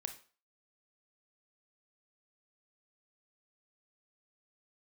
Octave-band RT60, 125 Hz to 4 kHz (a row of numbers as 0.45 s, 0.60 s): 0.30 s, 0.35 s, 0.40 s, 0.40 s, 0.35 s, 0.35 s